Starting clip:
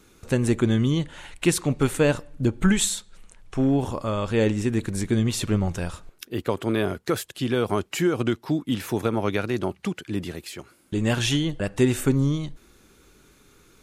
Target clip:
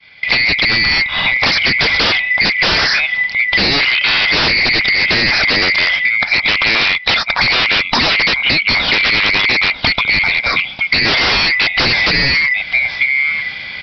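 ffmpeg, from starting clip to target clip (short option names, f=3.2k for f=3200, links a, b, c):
-filter_complex "[0:a]afftfilt=real='real(if(lt(b,920),b+92*(1-2*mod(floor(b/92),2)),b),0)':imag='imag(if(lt(b,920),b+92*(1-2*mod(floor(b/92),2)),b),0)':win_size=2048:overlap=0.75,equalizer=f=380:t=o:w=0.87:g=-12,asplit=2[a][b];[b]aecho=0:1:945:0.119[c];[a][c]amix=inputs=2:normalize=0,dynaudnorm=f=690:g=3:m=7dB,agate=range=-33dB:threshold=-47dB:ratio=3:detection=peak,aresample=11025,aeval=exprs='0.447*sin(PI/2*5.62*val(0)/0.447)':c=same,aresample=44100,acompressor=threshold=-15dB:ratio=12,volume=4.5dB"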